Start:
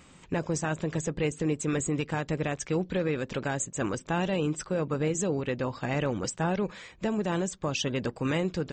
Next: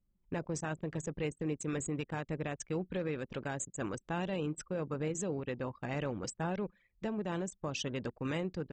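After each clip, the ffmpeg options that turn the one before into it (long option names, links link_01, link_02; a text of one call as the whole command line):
ffmpeg -i in.wav -af "anlmdn=1.58,volume=-7.5dB" out.wav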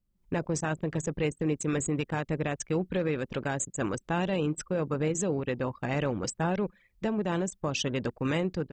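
ffmpeg -i in.wav -af "dynaudnorm=framelen=120:gausssize=3:maxgain=7dB" out.wav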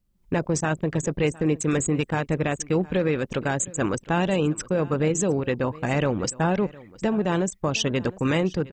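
ffmpeg -i in.wav -af "aecho=1:1:711:0.0891,volume=6dB" out.wav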